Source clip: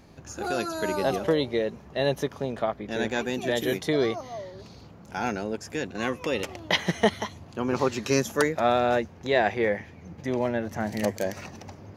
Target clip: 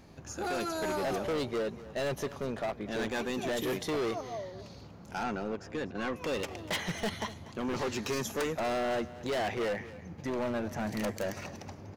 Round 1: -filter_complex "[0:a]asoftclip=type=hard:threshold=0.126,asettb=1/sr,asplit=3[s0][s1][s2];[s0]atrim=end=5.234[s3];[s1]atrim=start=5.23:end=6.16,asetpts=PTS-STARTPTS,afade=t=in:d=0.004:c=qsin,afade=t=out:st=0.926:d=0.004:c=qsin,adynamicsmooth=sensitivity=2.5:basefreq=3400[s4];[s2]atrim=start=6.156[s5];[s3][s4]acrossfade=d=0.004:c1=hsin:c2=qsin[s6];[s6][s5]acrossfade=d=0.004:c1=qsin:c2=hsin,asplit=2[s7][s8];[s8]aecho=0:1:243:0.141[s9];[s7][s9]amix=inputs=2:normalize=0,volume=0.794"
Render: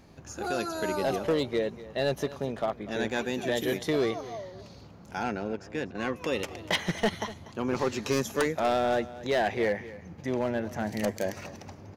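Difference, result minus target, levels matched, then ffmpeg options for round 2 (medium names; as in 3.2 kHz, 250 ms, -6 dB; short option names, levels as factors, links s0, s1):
hard clipper: distortion -9 dB
-filter_complex "[0:a]asoftclip=type=hard:threshold=0.0447,asettb=1/sr,asplit=3[s0][s1][s2];[s0]atrim=end=5.234[s3];[s1]atrim=start=5.23:end=6.16,asetpts=PTS-STARTPTS,afade=t=in:d=0.004:c=qsin,afade=t=out:st=0.926:d=0.004:c=qsin,adynamicsmooth=sensitivity=2.5:basefreq=3400[s4];[s2]atrim=start=6.156[s5];[s3][s4]acrossfade=d=0.004:c1=hsin:c2=qsin[s6];[s6][s5]acrossfade=d=0.004:c1=qsin:c2=hsin,asplit=2[s7][s8];[s8]aecho=0:1:243:0.141[s9];[s7][s9]amix=inputs=2:normalize=0,volume=0.794"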